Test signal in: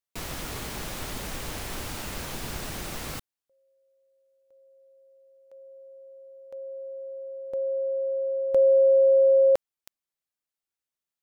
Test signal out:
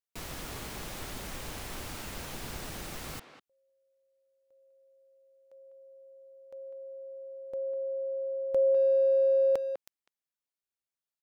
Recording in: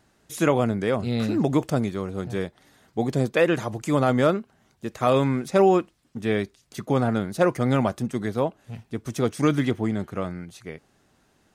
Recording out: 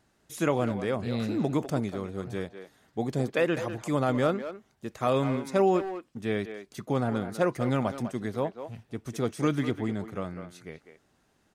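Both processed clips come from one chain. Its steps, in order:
far-end echo of a speakerphone 200 ms, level −9 dB
level −5.5 dB

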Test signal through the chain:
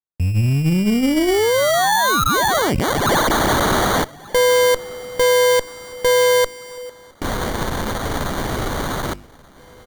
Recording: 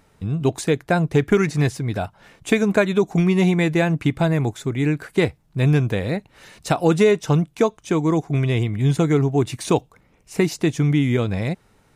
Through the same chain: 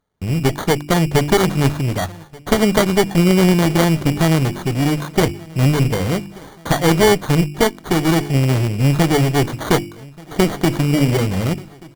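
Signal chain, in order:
stylus tracing distortion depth 0.31 ms
hum removal 49.19 Hz, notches 7
noise gate −44 dBFS, range −24 dB
sample-rate reduction 2,600 Hz, jitter 0%
asymmetric clip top −26.5 dBFS
on a send: repeating echo 1,182 ms, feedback 53%, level −23.5 dB
on the sum: level +7 dB

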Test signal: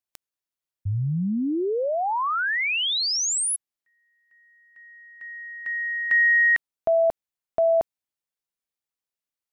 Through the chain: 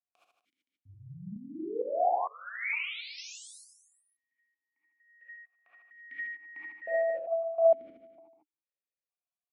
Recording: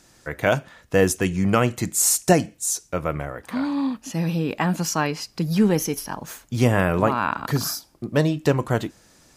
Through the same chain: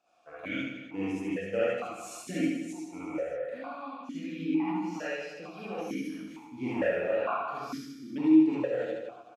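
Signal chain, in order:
reverse bouncing-ball delay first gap 70 ms, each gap 1.2×, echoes 5
reverb whose tail is shaped and stops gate 100 ms rising, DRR −7.5 dB
formant filter that steps through the vowels 2.2 Hz
level −7 dB

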